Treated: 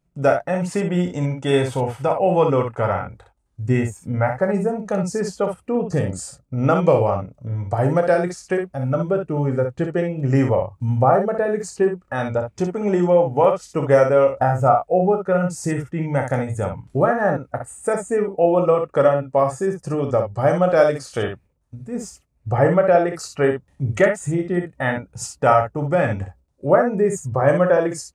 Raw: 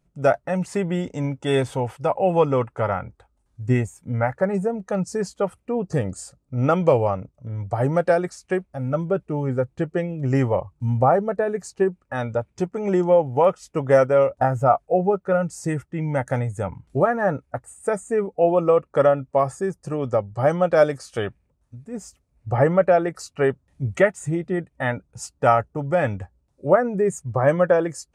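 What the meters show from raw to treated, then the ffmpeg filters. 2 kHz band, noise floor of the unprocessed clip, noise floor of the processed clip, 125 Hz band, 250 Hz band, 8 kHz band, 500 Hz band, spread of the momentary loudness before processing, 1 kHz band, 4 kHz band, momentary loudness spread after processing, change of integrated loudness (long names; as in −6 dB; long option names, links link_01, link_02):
+2.5 dB, −69 dBFS, −63 dBFS, +2.5 dB, +3.0 dB, +4.0 dB, +2.0 dB, 11 LU, +2.5 dB, can't be measured, 10 LU, +2.5 dB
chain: -filter_complex "[0:a]asplit=2[link_01][link_02];[link_02]acompressor=threshold=-31dB:ratio=6,volume=-3dB[link_03];[link_01][link_03]amix=inputs=2:normalize=0,agate=range=-8dB:threshold=-48dB:ratio=16:detection=peak,aecho=1:1:29|62:0.299|0.473"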